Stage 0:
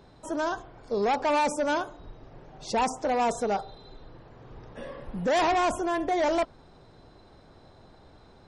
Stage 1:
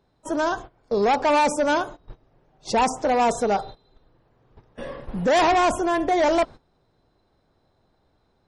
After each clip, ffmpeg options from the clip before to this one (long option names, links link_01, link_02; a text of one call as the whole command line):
ffmpeg -i in.wav -af "agate=range=-18dB:threshold=-41dB:ratio=16:detection=peak,volume=5.5dB" out.wav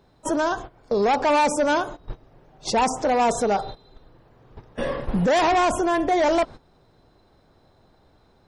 ffmpeg -i in.wav -af "alimiter=limit=-23dB:level=0:latency=1:release=241,volume=8dB" out.wav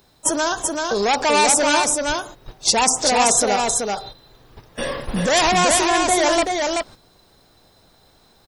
ffmpeg -i in.wav -af "crystalizer=i=6:c=0,aecho=1:1:382:0.668,volume=-1dB" out.wav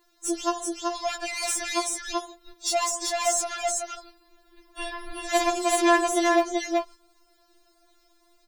ffmpeg -i in.wav -af "asoftclip=type=tanh:threshold=-12dB,afftfilt=real='re*4*eq(mod(b,16),0)':imag='im*4*eq(mod(b,16),0)':win_size=2048:overlap=0.75,volume=-5dB" out.wav